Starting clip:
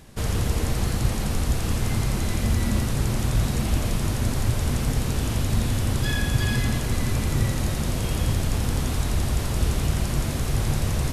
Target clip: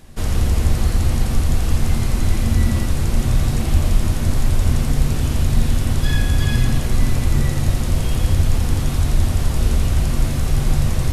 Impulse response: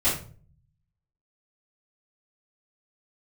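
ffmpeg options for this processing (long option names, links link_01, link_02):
-filter_complex "[0:a]asplit=2[link_01][link_02];[1:a]atrim=start_sample=2205,lowshelf=frequency=76:gain=7[link_03];[link_02][link_03]afir=irnorm=-1:irlink=0,volume=-18dB[link_04];[link_01][link_04]amix=inputs=2:normalize=0"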